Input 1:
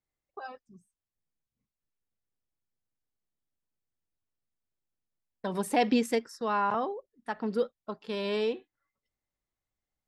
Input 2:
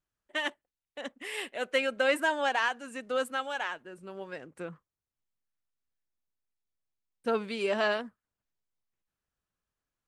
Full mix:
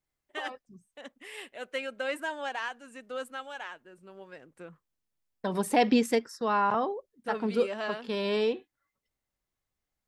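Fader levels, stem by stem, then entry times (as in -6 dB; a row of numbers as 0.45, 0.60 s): +2.0, -6.5 dB; 0.00, 0.00 s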